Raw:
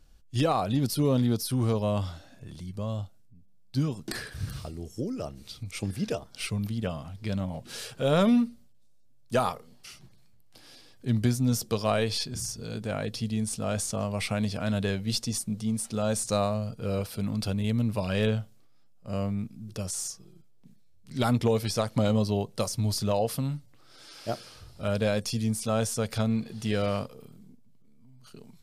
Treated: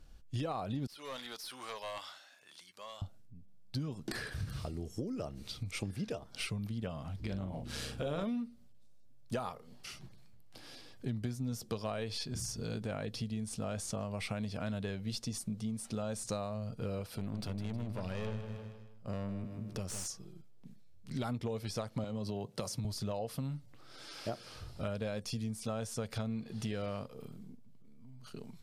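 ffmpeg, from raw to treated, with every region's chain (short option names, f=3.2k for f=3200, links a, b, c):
-filter_complex "[0:a]asettb=1/sr,asplit=3[a][b][c];[a]atrim=end=0.874[d];[b]atrim=start=0.87:end=3.02,asetpts=PTS-STARTPTS,afade=t=in:d=0.004:c=qsin,afade=t=out:st=2.146:d=0.004:c=qsin,acrossover=split=3500[e][f];[f]acompressor=threshold=-44dB:ratio=4:attack=1:release=60[g];[e][g]amix=inputs=2:normalize=0,highpass=1.3k,aeval=exprs='clip(val(0),-1,0.01)':c=same[h];[c]atrim=start=3.016[i];[d][h]acrossfade=d=0.004:c1=hsin:c2=qsin[j];[j][i]acrossfade=d=0.004:c1=qsin:c2=hsin,asettb=1/sr,asplit=3[k][l][m];[k]atrim=end=7.204[n];[l]atrim=start=7.2:end=8.24,asetpts=PTS-STARTPTS,afade=t=in:d=0.004:c=qsin,afade=t=out:st=1.036:d=0.004:c=qsin,aeval=exprs='val(0)+0.00891*(sin(2*PI*60*n/s)+sin(2*PI*2*60*n/s)/2+sin(2*PI*3*60*n/s)/3+sin(2*PI*4*60*n/s)/4+sin(2*PI*5*60*n/s)/5)':c=same,tremolo=f=150:d=0.571,asplit=2[o][p];[p]adelay=42,volume=-7.5dB[q];[o][q]amix=inputs=2:normalize=0,atrim=end_sample=45864[r];[m]atrim=start=8.236[s];[n][r]acrossfade=d=0.004:c1=hsin:c2=qsin[t];[t][s]acrossfade=d=0.004:c1=qsin:c2=hsin,asettb=1/sr,asplit=3[u][v][w];[u]atrim=end=17.184[x];[v]atrim=start=17.18:end=20.06,asetpts=PTS-STARTPTS,afade=t=in:d=0.004:c=qsin,afade=t=out:st=2.876:d=0.004:c=qsin,aeval=exprs='(tanh(25.1*val(0)+0.55)-tanh(0.55))/25.1':c=same,aecho=1:1:157|314|471|628:0.335|0.134|0.0536|0.0214,atrim=end_sample=127008[y];[w]atrim=start=20.056[z];[x][y]acrossfade=d=0.004:c1=hsin:c2=qsin[aa];[aa][z]acrossfade=d=0.004:c1=qsin:c2=hsin,asettb=1/sr,asplit=3[ab][ac][ad];[ab]atrim=end=22.044[ae];[ac]atrim=start=22.04:end=22.85,asetpts=PTS-STARTPTS,afade=t=in:d=0.004:c=qsin,afade=t=out:st=0.806:d=0.004:c=qsin,highpass=f=95:w=0.5412,highpass=f=95:w=1.3066,acompressor=threshold=-26dB:ratio=6:attack=3.2:release=140:knee=1:detection=peak[af];[ad]atrim=start=22.846[ag];[ae][af]acrossfade=d=0.004:c1=hsin:c2=qsin[ah];[ah][ag]acrossfade=d=0.004:c1=qsin:c2=hsin,highshelf=f=5.3k:g=-6,acompressor=threshold=-37dB:ratio=5,volume=1.5dB"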